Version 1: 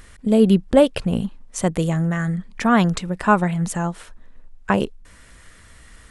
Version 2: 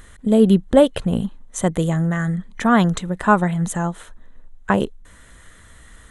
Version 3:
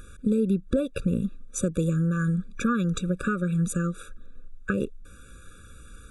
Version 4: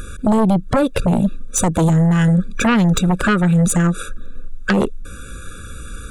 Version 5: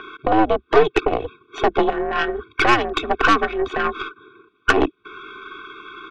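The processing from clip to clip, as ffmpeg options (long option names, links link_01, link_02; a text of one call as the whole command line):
ffmpeg -i in.wav -af "superequalizer=12b=0.562:14b=0.398,volume=1dB" out.wav
ffmpeg -i in.wav -af "alimiter=limit=-7dB:level=0:latency=1:release=232,acompressor=threshold=-21dB:ratio=4,afftfilt=real='re*eq(mod(floor(b*sr/1024/560),2),0)':imag='im*eq(mod(floor(b*sr/1024/560),2),0)':win_size=1024:overlap=0.75" out.wav
ffmpeg -i in.wav -af "aeval=exprs='0.299*sin(PI/2*3.55*val(0)/0.299)':channel_layout=same" out.wav
ffmpeg -i in.wav -af "highpass=frequency=430:width_type=q:width=0.5412,highpass=frequency=430:width_type=q:width=1.307,lowpass=frequency=3500:width_type=q:width=0.5176,lowpass=frequency=3500:width_type=q:width=0.7071,lowpass=frequency=3500:width_type=q:width=1.932,afreqshift=-120,aeval=exprs='0.501*(cos(1*acos(clip(val(0)/0.501,-1,1)))-cos(1*PI/2))+0.0562*(cos(6*acos(clip(val(0)/0.501,-1,1)))-cos(6*PI/2))':channel_layout=same,aecho=1:1:2.7:0.46,volume=3dB" out.wav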